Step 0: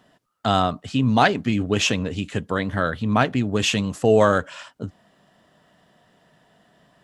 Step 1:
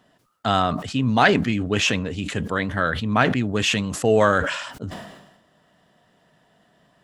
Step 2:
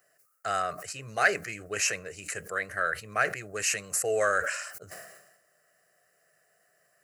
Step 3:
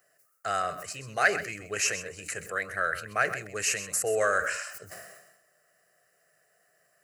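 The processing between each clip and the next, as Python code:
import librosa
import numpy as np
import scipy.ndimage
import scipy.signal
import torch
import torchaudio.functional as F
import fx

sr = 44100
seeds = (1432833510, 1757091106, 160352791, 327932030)

y1 = fx.dynamic_eq(x, sr, hz=1800.0, q=1.1, threshold_db=-35.0, ratio=4.0, max_db=5)
y1 = fx.sustainer(y1, sr, db_per_s=55.0)
y1 = y1 * librosa.db_to_amplitude(-2.0)
y2 = fx.riaa(y1, sr, side='recording')
y2 = fx.fixed_phaser(y2, sr, hz=930.0, stages=6)
y2 = y2 * librosa.db_to_amplitude(-5.5)
y3 = y2 + 10.0 ** (-12.5 / 20.0) * np.pad(y2, (int(129 * sr / 1000.0), 0))[:len(y2)]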